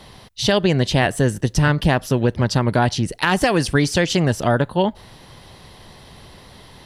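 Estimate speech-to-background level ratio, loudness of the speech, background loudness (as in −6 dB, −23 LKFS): 18.0 dB, −19.0 LKFS, −37.0 LKFS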